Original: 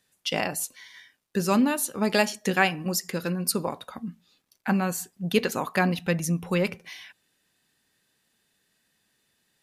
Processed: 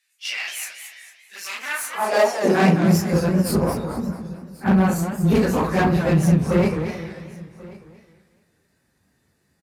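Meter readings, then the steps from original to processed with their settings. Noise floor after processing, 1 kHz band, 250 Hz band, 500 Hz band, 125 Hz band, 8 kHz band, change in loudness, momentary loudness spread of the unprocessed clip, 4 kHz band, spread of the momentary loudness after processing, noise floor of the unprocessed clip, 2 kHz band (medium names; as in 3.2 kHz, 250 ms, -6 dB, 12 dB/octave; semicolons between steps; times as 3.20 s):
-67 dBFS, +5.0 dB, +7.5 dB, +7.0 dB, +10.5 dB, -0.5 dB, +6.0 dB, 13 LU, 0.0 dB, 18 LU, -72 dBFS, +2.0 dB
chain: phase randomisation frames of 100 ms; Chebyshev shaper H 3 -20 dB, 6 -19 dB, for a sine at -8 dBFS; peaking EQ 3.2 kHz -11 dB 0.51 oct; hum notches 60/120/180 Hz; hard clipper -25 dBFS, distortion -7 dB; delay 1088 ms -22 dB; high-pass sweep 2.5 kHz -> 64 Hz, 1.57–3.16 s; tilt EQ -2 dB/octave; spring tank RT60 1.5 s, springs 42/48 ms, chirp 50 ms, DRR 14.5 dB; modulated delay 222 ms, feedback 38%, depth 194 cents, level -8.5 dB; trim +8.5 dB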